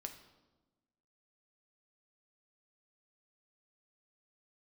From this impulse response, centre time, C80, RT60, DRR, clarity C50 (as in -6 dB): 16 ms, 12.0 dB, 1.2 s, 5.0 dB, 10.0 dB